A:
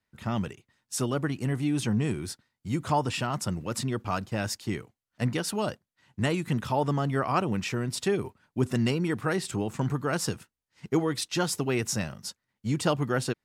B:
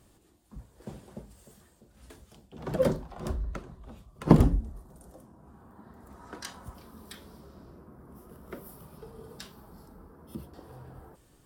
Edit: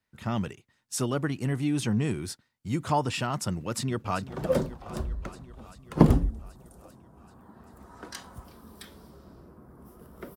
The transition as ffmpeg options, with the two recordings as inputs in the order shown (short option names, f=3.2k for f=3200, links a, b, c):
-filter_complex "[0:a]apad=whole_dur=10.36,atrim=end=10.36,atrim=end=4.272[a];[1:a]atrim=start=2.568:end=8.66[b];[a][b]acrossfade=d=0.004:c1=hsin:c2=hsin,asplit=2[c][d];[d]afade=t=in:st=3.49:d=0.01,afade=t=out:st=4.27:d=0.01,aecho=0:1:390|780|1170|1560|1950|2340|2730|3120|3510|3900|4290:0.177828|0.133371|0.100028|0.0750212|0.0562659|0.0421994|0.0316496|0.0237372|0.0178029|0.0133522|0.0100141[e];[c][e]amix=inputs=2:normalize=0"